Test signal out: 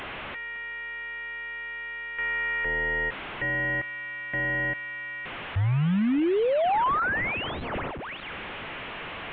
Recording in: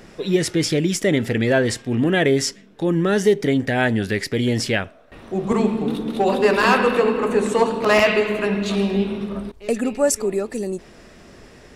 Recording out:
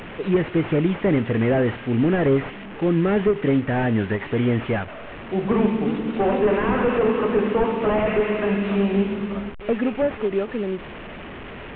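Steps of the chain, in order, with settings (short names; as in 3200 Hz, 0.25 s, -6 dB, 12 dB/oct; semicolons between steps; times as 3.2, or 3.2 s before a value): delta modulation 16 kbps, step -30 dBFS; ending taper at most 290 dB/s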